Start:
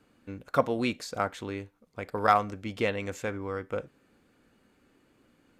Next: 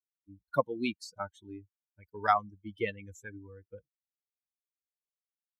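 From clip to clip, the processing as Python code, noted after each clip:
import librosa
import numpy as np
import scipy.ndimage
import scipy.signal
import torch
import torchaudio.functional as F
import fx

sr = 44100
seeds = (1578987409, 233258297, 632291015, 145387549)

y = fx.bin_expand(x, sr, power=3.0)
y = scipy.signal.sosfilt(scipy.signal.butter(2, 76.0, 'highpass', fs=sr, output='sos'), y)
y = fx.high_shelf(y, sr, hz=9200.0, db=-7.0)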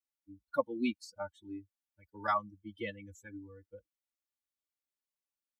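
y = x + 0.95 * np.pad(x, (int(3.5 * sr / 1000.0), 0))[:len(x)]
y = fx.hpss(y, sr, part='percussive', gain_db=-4)
y = F.gain(torch.from_numpy(y), -3.5).numpy()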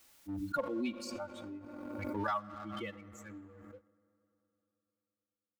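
y = fx.rev_fdn(x, sr, rt60_s=3.6, lf_ratio=1.0, hf_ratio=0.45, size_ms=29.0, drr_db=16.0)
y = fx.leveller(y, sr, passes=1)
y = fx.pre_swell(y, sr, db_per_s=27.0)
y = F.gain(torch.from_numpy(y), -7.5).numpy()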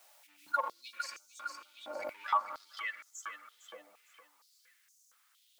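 y = fx.quant_dither(x, sr, seeds[0], bits=12, dither='triangular')
y = fx.echo_feedback(y, sr, ms=457, feedback_pct=37, wet_db=-6.5)
y = fx.filter_held_highpass(y, sr, hz=4.3, low_hz=680.0, high_hz=6300.0)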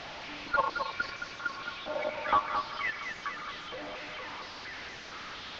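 y = fx.delta_mod(x, sr, bps=32000, step_db=-40.5)
y = fx.air_absorb(y, sr, metres=200.0)
y = y + 10.0 ** (-6.5 / 20.0) * np.pad(y, (int(219 * sr / 1000.0), 0))[:len(y)]
y = F.gain(torch.from_numpy(y), 7.5).numpy()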